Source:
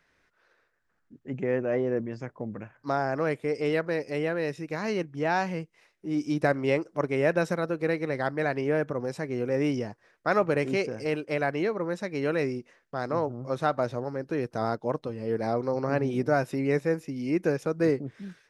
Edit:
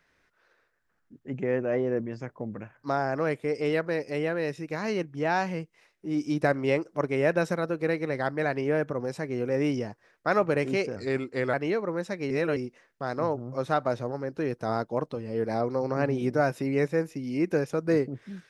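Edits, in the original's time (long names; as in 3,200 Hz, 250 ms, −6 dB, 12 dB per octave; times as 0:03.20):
0:10.96–0:11.46: play speed 87%
0:12.23–0:12.49: reverse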